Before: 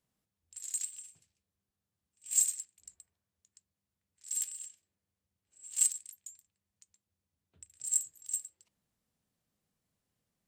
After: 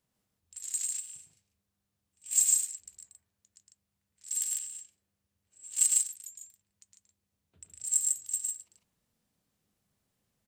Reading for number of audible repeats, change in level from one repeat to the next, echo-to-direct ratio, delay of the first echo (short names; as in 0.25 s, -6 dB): 2, no steady repeat, -1.0 dB, 0.11 s